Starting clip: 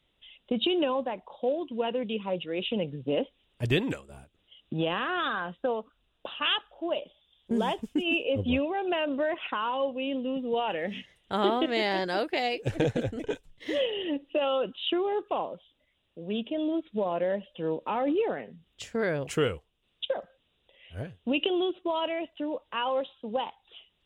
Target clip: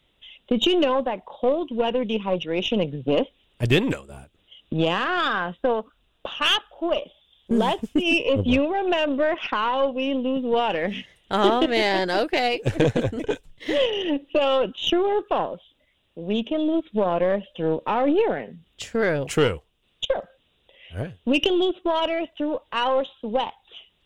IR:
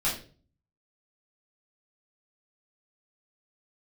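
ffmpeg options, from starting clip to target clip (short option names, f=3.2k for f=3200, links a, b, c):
-af "aeval=exprs='0.282*(cos(1*acos(clip(val(0)/0.282,-1,1)))-cos(1*PI/2))+0.0112*(cos(8*acos(clip(val(0)/0.282,-1,1)))-cos(8*PI/2))':c=same,volume=6.5dB"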